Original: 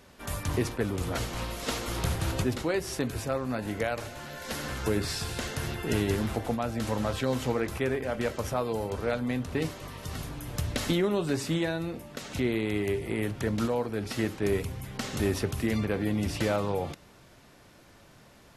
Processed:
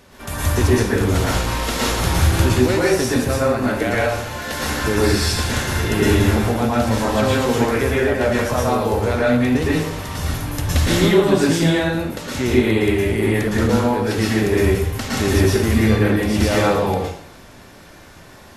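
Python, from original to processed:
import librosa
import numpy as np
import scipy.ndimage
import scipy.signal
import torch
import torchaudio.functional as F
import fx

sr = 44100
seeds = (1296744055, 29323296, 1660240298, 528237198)

y = fx.rev_plate(x, sr, seeds[0], rt60_s=0.65, hf_ratio=0.9, predelay_ms=100, drr_db=-6.0)
y = y * 10.0 ** (6.0 / 20.0)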